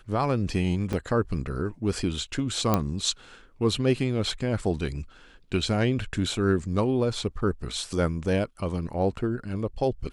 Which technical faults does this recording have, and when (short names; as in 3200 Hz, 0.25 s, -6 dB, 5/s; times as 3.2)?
0.93 gap 3.1 ms
2.74 pop -8 dBFS